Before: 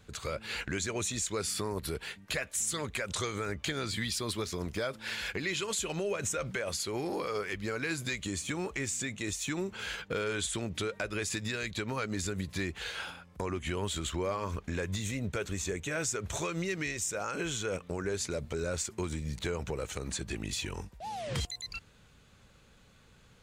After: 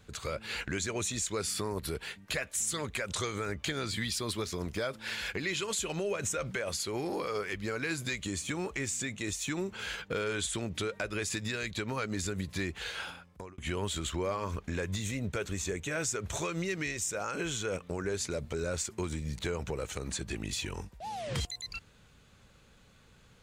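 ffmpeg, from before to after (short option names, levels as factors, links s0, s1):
-filter_complex "[0:a]asplit=2[s0][s1];[s0]atrim=end=13.58,asetpts=PTS-STARTPTS,afade=t=out:st=13.15:d=0.43[s2];[s1]atrim=start=13.58,asetpts=PTS-STARTPTS,afade=t=in:d=0.004:c=hsin[s3];[s2][s3]concat=n=2:v=0:a=1"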